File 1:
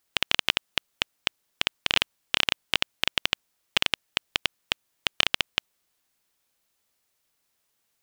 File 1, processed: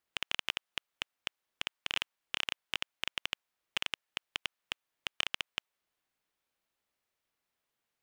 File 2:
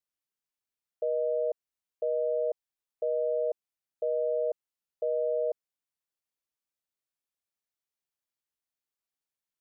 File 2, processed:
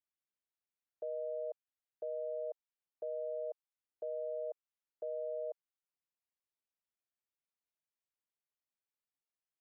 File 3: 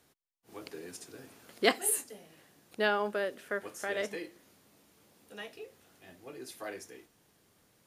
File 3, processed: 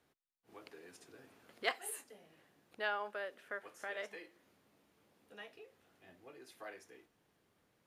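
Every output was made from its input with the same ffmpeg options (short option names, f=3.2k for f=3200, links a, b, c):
-filter_complex "[0:a]bass=f=250:g=-2,treble=f=4k:g=-9,acrossover=split=550[a][b];[a]acompressor=threshold=-52dB:ratio=4[c];[c][b]amix=inputs=2:normalize=0,asoftclip=type=tanh:threshold=-8.5dB,volume=-6dB"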